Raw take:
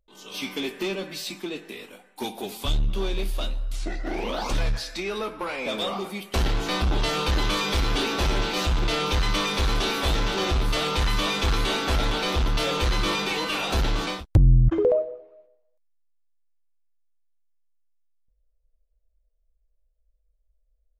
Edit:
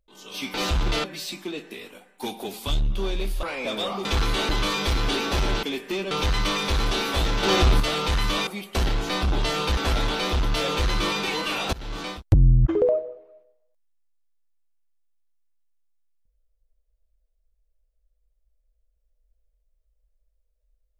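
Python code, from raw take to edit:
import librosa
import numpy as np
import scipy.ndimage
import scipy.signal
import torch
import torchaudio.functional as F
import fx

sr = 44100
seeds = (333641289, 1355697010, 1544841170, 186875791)

y = fx.edit(x, sr, fx.swap(start_s=0.54, length_s=0.48, other_s=8.5, other_length_s=0.5),
    fx.cut(start_s=3.41, length_s=2.03),
    fx.swap(start_s=6.06, length_s=1.3, other_s=11.36, other_length_s=0.44),
    fx.clip_gain(start_s=10.32, length_s=0.37, db=5.5),
    fx.fade_in_from(start_s=13.76, length_s=0.51, floor_db=-23.5), tone=tone)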